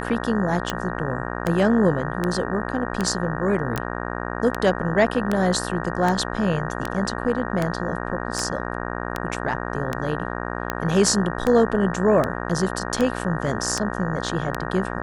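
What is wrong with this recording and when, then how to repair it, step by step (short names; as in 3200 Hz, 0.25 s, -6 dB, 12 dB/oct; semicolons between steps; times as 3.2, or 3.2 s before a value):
buzz 60 Hz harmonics 31 -29 dBFS
tick 78 rpm -9 dBFS
3.76 pop -13 dBFS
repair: de-click; de-hum 60 Hz, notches 31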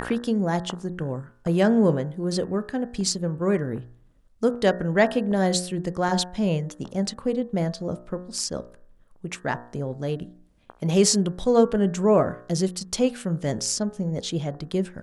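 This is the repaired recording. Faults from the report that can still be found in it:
none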